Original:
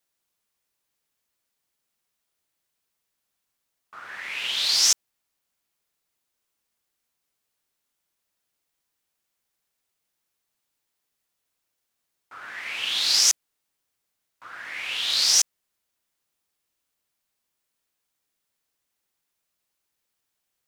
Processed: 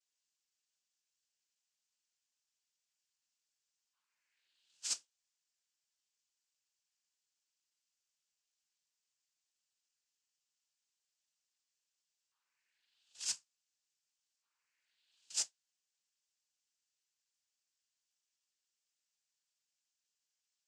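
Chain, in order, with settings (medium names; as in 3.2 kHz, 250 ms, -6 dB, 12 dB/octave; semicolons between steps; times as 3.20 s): zero-crossing glitches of -19 dBFS; gate -12 dBFS, range -55 dB; peak limiter -31 dBFS, peak gain reduction 5 dB; waveshaping leveller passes 2; flange 0.65 Hz, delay 9.8 ms, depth 8.3 ms, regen +59%; noise-vocoded speech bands 8; trim +8 dB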